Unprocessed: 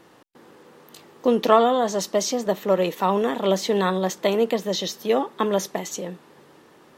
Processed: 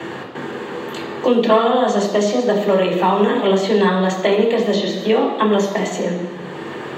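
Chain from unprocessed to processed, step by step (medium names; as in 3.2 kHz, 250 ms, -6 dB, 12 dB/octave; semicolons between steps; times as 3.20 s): reverberation RT60 0.90 s, pre-delay 3 ms, DRR -3.5 dB; three bands compressed up and down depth 70%; trim -8.5 dB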